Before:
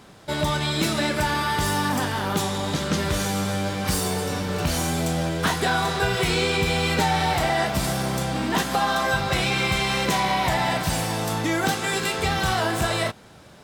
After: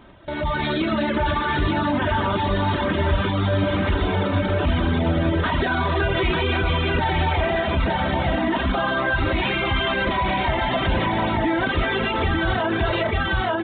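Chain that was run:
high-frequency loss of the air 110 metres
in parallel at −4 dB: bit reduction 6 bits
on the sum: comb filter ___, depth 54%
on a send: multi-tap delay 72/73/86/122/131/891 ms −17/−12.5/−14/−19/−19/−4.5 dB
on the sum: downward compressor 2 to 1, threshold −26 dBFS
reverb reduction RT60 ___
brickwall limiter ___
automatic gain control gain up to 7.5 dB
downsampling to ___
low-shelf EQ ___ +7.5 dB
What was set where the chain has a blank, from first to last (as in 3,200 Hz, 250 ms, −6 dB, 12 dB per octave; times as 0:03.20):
3.2 ms, 0.73 s, −21 dBFS, 8,000 Hz, 87 Hz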